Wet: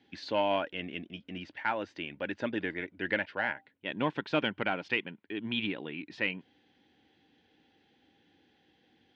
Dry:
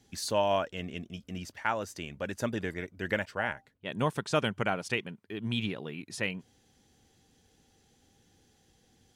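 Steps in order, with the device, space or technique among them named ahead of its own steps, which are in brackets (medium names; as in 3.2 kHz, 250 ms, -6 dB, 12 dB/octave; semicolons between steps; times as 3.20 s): overdrive pedal into a guitar cabinet (overdrive pedal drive 10 dB, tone 5.1 kHz, clips at -13 dBFS; cabinet simulation 94–3500 Hz, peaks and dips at 120 Hz -4 dB, 300 Hz +8 dB, 440 Hz -3 dB, 670 Hz -4 dB, 1.2 kHz -9 dB); trim -1 dB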